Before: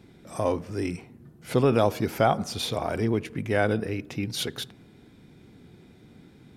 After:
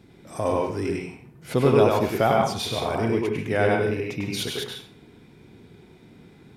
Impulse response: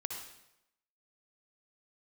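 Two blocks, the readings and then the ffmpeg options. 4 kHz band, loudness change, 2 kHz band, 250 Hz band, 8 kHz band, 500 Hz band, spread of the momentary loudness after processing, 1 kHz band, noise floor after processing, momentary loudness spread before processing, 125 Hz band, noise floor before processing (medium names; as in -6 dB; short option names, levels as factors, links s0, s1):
+2.0 dB, +3.0 dB, +3.5 dB, +2.0 dB, +1.5 dB, +4.0 dB, 13 LU, +3.5 dB, -52 dBFS, 10 LU, +2.0 dB, -54 dBFS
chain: -filter_complex "[0:a]asplit=2[s0][s1];[s1]equalizer=f=400:t=o:w=0.67:g=8,equalizer=f=1000:t=o:w=0.67:g=9,equalizer=f=2500:t=o:w=0.67:g=7[s2];[1:a]atrim=start_sample=2205,asetrate=83790,aresample=44100,adelay=100[s3];[s2][s3]afir=irnorm=-1:irlink=0,volume=1.12[s4];[s0][s4]amix=inputs=2:normalize=0"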